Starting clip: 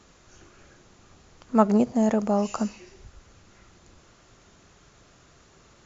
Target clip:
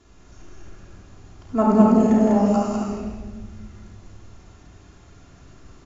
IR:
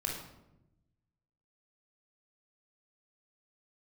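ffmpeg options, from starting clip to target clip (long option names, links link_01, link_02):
-filter_complex "[0:a]lowshelf=frequency=350:gain=6.5,aecho=1:1:166.2|198.3:0.316|0.794[link_01];[1:a]atrim=start_sample=2205,asetrate=25578,aresample=44100[link_02];[link_01][link_02]afir=irnorm=-1:irlink=0,volume=-7.5dB"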